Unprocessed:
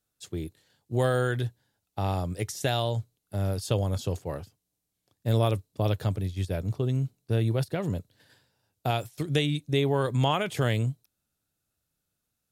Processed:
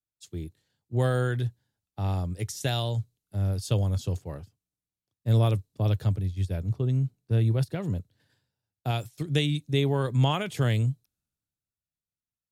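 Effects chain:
drawn EQ curve 130 Hz 0 dB, 580 Hz −7 dB, 6,500 Hz −4 dB, 12,000 Hz −6 dB
multiband upward and downward expander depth 40%
level +2.5 dB

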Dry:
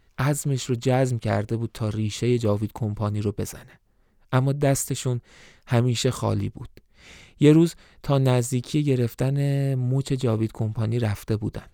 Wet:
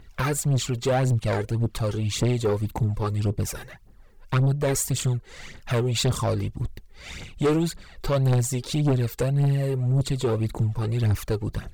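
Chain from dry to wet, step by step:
in parallel at +1.5 dB: downward compressor, threshold −33 dBFS, peak gain reduction 20.5 dB
on the sum: phase shifter 1.8 Hz, delay 2.6 ms, feedback 62%
soft clipping −15.5 dBFS, distortion −9 dB
level −1.5 dB

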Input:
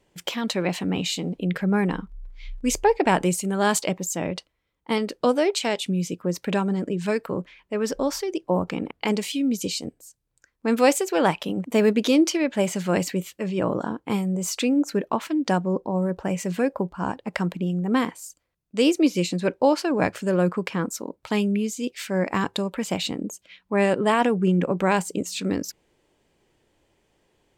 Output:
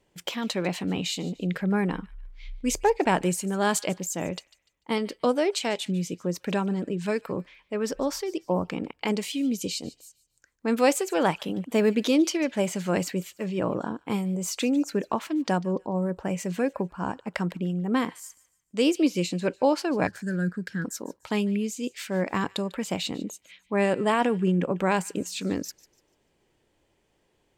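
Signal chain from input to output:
0:20.07–0:20.85: drawn EQ curve 200 Hz 0 dB, 1,100 Hz −24 dB, 1,600 Hz +7 dB, 2,400 Hz −20 dB, 4,100 Hz −3 dB
on a send: delay with a high-pass on its return 147 ms, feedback 32%, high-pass 1,900 Hz, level −19 dB
0:14.61–0:15.14: on the sum: multiband upward and downward compressor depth 40%
level −3 dB

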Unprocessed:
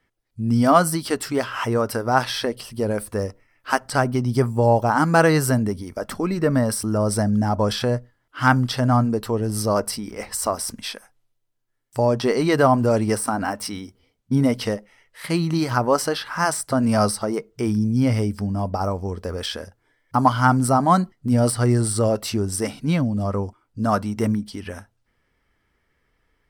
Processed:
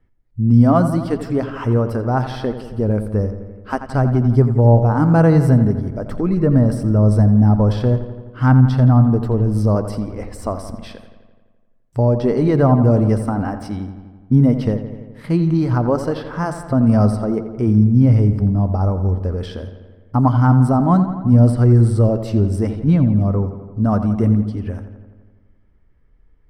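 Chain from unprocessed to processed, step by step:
spectral tilt −4 dB per octave
on a send: feedback echo with a low-pass in the loop 85 ms, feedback 68%, low-pass 4,400 Hz, level −11 dB
on the sum: dynamic equaliser 2,400 Hz, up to −3 dB, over −24 dBFS, Q 0.71
level −3 dB

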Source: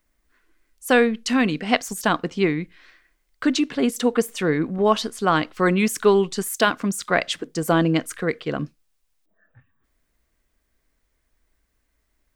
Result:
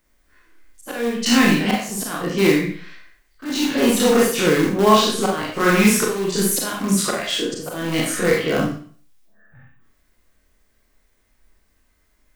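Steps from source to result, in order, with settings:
every bin's largest magnitude spread in time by 60 ms
0:05.48–0:06.21: hum removal 60.51 Hz, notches 33
in parallel at −10 dB: wrap-around overflow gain 13 dB
on the sum: volume swells 356 ms
four-comb reverb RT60 0.46 s, combs from 30 ms, DRR −1 dB
level −2 dB

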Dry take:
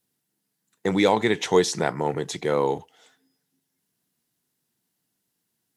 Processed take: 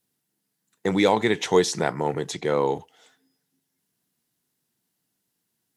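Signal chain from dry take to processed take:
0:02.32–0:02.75: low-pass filter 8,600 Hz 12 dB per octave

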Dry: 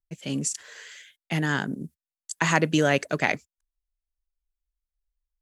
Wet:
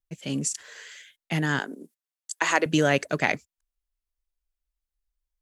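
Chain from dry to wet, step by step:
0:01.59–0:02.66: high-pass filter 310 Hz 24 dB per octave

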